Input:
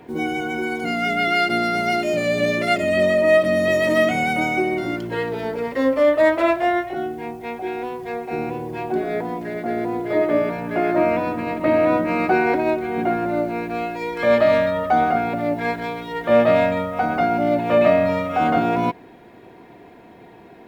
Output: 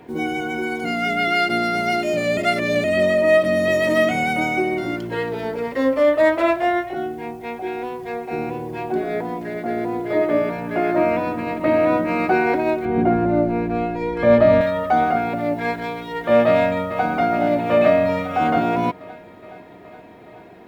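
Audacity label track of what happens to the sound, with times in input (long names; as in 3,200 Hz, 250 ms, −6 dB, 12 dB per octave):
2.370000	2.840000	reverse
12.850000	14.610000	spectral tilt −3 dB per octave
16.480000	17.050000	delay throw 420 ms, feedback 75%, level −10.5 dB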